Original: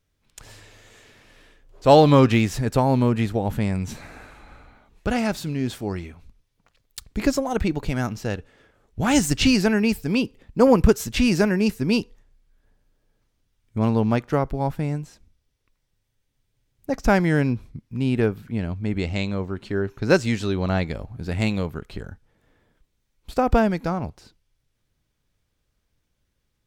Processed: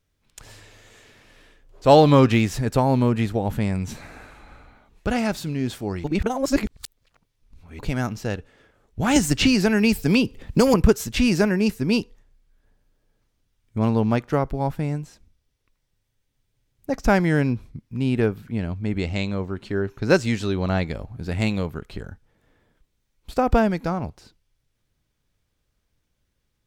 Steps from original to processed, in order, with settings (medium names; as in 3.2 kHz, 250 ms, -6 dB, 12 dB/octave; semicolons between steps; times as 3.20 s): 6.04–7.79 s: reverse; 9.16–10.74 s: three bands compressed up and down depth 100%